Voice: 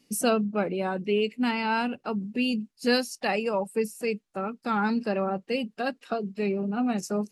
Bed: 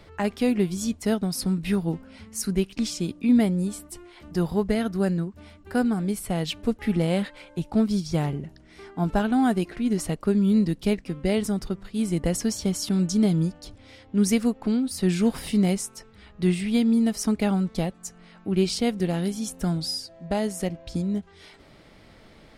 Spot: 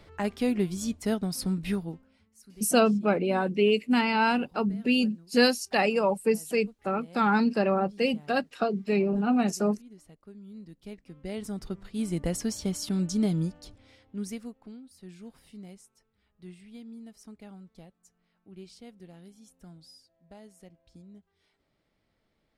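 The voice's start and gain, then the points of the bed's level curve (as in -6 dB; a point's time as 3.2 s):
2.50 s, +2.5 dB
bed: 1.7 s -4 dB
2.36 s -26 dB
10.49 s -26 dB
11.79 s -5 dB
13.62 s -5 dB
14.89 s -24 dB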